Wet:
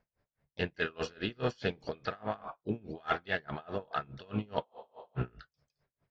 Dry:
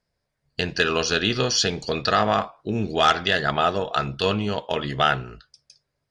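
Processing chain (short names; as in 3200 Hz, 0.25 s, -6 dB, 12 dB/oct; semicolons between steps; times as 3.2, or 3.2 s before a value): LPF 2400 Hz 12 dB/oct; reverse; compressor 16:1, threshold -29 dBFS, peak gain reduction 16 dB; reverse; harmoniser +4 st -13 dB; spectral freeze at 4.66, 0.51 s; dB-linear tremolo 4.8 Hz, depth 29 dB; gain +3.5 dB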